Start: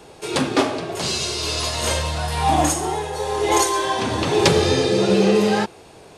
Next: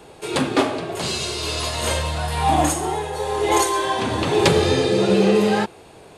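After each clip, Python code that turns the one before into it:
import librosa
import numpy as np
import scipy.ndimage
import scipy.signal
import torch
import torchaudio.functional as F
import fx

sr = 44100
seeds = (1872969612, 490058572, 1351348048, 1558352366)

y = fx.peak_eq(x, sr, hz=5600.0, db=-6.0, octaves=0.51)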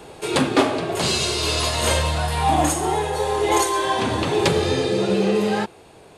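y = fx.rider(x, sr, range_db=4, speed_s=0.5)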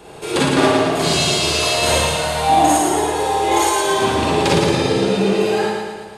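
y = fx.echo_feedback(x, sr, ms=113, feedback_pct=59, wet_db=-4)
y = fx.rev_schroeder(y, sr, rt60_s=0.31, comb_ms=38, drr_db=-2.0)
y = F.gain(torch.from_numpy(y), -1.5).numpy()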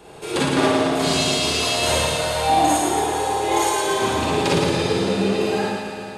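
y = fx.echo_heads(x, sr, ms=147, heads='all three', feedback_pct=44, wet_db=-14.5)
y = F.gain(torch.from_numpy(y), -4.0).numpy()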